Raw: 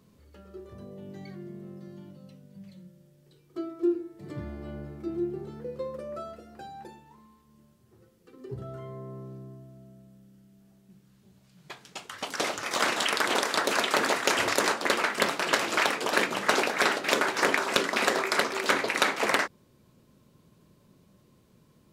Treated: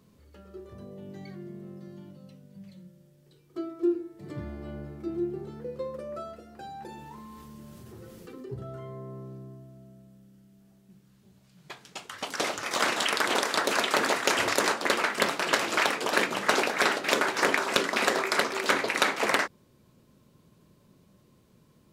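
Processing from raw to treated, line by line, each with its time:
6.63–8.51 s: level flattener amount 70%

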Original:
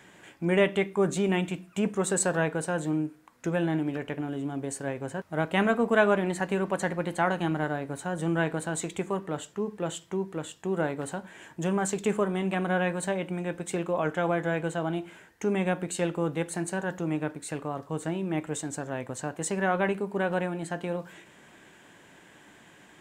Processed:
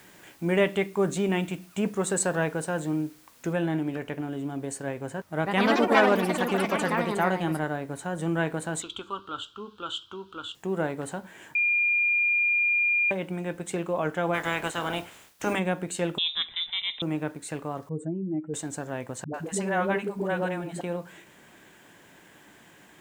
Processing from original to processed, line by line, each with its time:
3.53 s: noise floor step -58 dB -66 dB
5.36–8.05 s: ever faster or slower copies 102 ms, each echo +4 st, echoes 3
8.82–10.55 s: FFT filter 110 Hz 0 dB, 160 Hz -20 dB, 250 Hz -5 dB, 690 Hz -14 dB, 1.4 kHz +10 dB, 1.9 kHz -24 dB, 3.2 kHz +13 dB, 5.9 kHz -7 dB, 9.5 kHz -15 dB
11.55–13.11 s: bleep 2.41 kHz -20.5 dBFS
14.33–15.58 s: spectral peaks clipped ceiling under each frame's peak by 20 dB
16.18–17.02 s: frequency inversion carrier 3.8 kHz
17.89–18.54 s: spectral contrast enhancement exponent 2.4
19.24–20.81 s: phase dispersion highs, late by 100 ms, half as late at 370 Hz

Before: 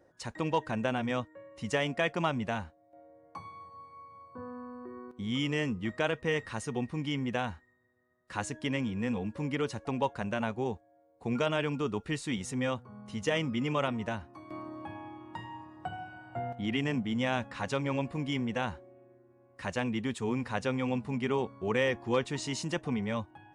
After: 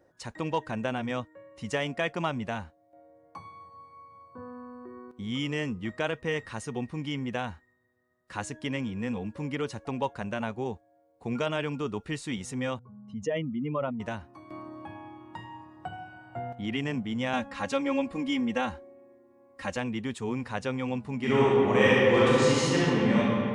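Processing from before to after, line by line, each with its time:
12.79–14.00 s: spectral contrast enhancement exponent 1.8
17.33–19.77 s: comb 3.7 ms, depth 97%
21.16–23.18 s: reverb throw, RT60 2.6 s, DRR -9 dB

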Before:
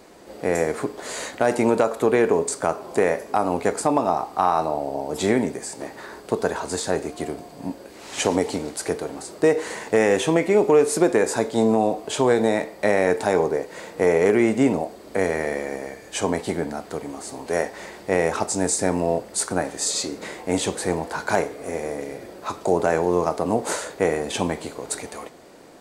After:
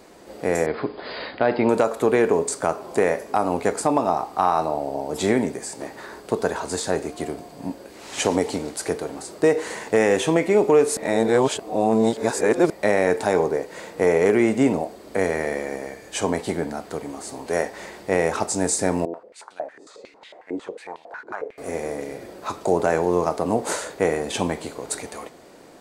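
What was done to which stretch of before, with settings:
0.66–1.69 s: brick-wall FIR low-pass 5.1 kHz
10.97–12.70 s: reverse
19.05–21.58 s: step-sequenced band-pass 11 Hz 340–3300 Hz

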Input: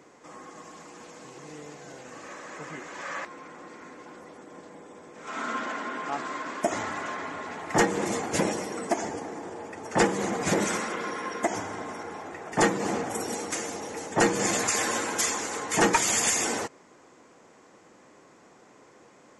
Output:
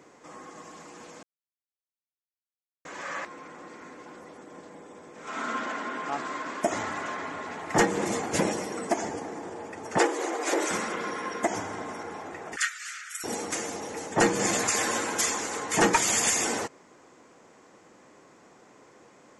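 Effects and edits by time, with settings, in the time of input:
1.23–2.85 s: mute
9.98–10.71 s: elliptic high-pass 300 Hz, stop band 50 dB
12.56–13.24 s: steep high-pass 1.3 kHz 96 dB/octave

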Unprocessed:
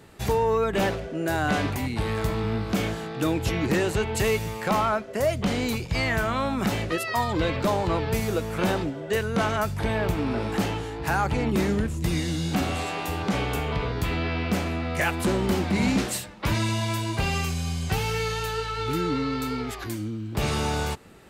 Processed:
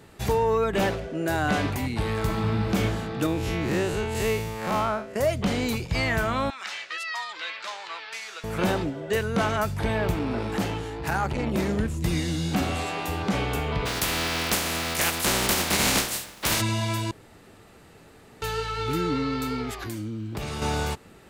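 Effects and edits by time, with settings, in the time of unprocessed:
2.18–2.74 s: reverb throw, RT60 2.8 s, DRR 2.5 dB
3.26–5.16 s: spectral blur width 100 ms
6.50–8.44 s: Butterworth band-pass 3.1 kHz, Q 0.6
10.18–11.79 s: transformer saturation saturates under 310 Hz
13.85–16.60 s: spectral contrast reduction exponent 0.35
17.11–18.42 s: room tone
19.82–20.62 s: compression, threshold -28 dBFS

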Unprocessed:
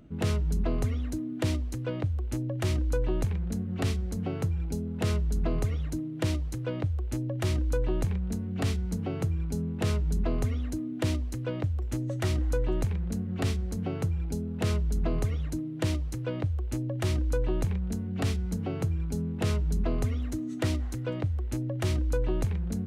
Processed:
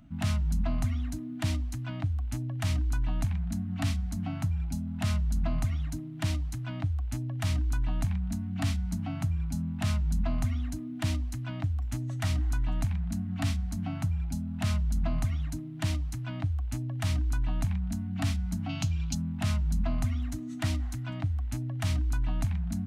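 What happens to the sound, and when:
18.69–19.15 s: high-order bell 4.2 kHz +13 dB
whole clip: elliptic band-stop 290–660 Hz

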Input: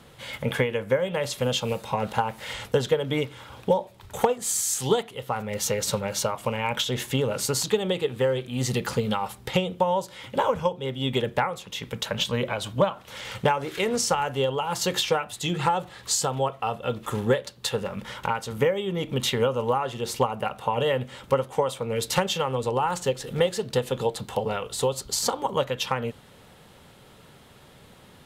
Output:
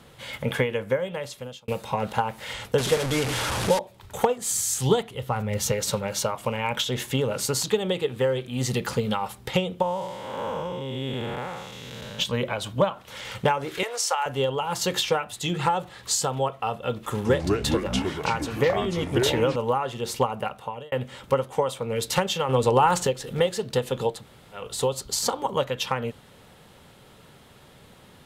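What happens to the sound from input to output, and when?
0.80–1.68 s: fade out
2.78–3.79 s: one-bit delta coder 64 kbps, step -21 dBFS
4.50–5.72 s: peaking EQ 74 Hz +11 dB 2.1 oct
9.82–12.19 s: spectral blur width 321 ms
13.83–14.26 s: high-pass 570 Hz 24 dB/octave
17.10–19.56 s: ever faster or slower copies 147 ms, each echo -4 st, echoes 3
20.39–20.92 s: fade out
22.49–23.07 s: gain +6 dB
24.18–24.59 s: room tone, crossfade 0.16 s

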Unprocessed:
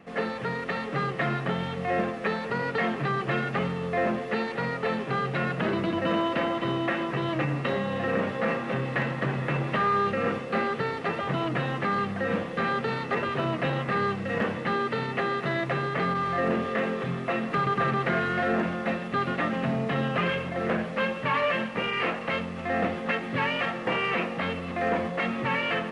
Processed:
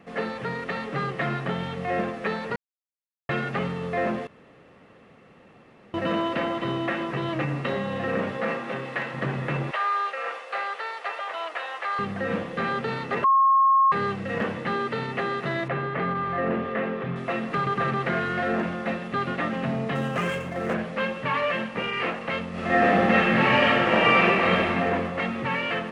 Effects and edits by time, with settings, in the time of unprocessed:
2.56–3.29 s: mute
4.27–5.94 s: room tone
8.37–9.13 s: high-pass 150 Hz -> 620 Hz 6 dB/octave
9.71–11.99 s: high-pass 610 Hz 24 dB/octave
13.24–13.92 s: bleep 1.08 kHz -15 dBFS
15.68–17.16 s: low-pass 2.7 kHz
19.95–20.74 s: median filter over 9 samples
22.49–24.68 s: reverb throw, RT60 2.2 s, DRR -8 dB

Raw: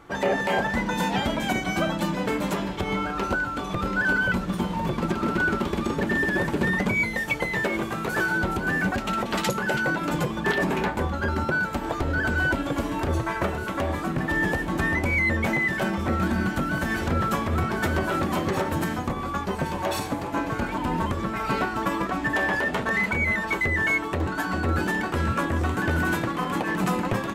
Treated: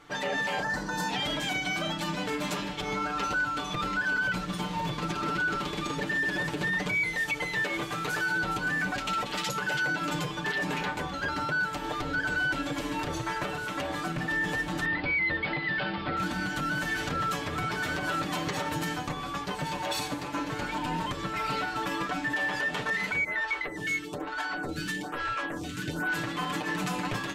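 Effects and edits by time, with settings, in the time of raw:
0.62–1.08 s: time-frequency box 1.9–4 kHz -11 dB
14.85–16.17 s: steep low-pass 4.9 kHz 96 dB/octave
23.24–26.14 s: lamp-driven phase shifter 1.1 Hz
whole clip: peaking EQ 4.3 kHz +10.5 dB 2.6 oct; comb 6.7 ms, depth 73%; peak limiter -13 dBFS; trim -8.5 dB

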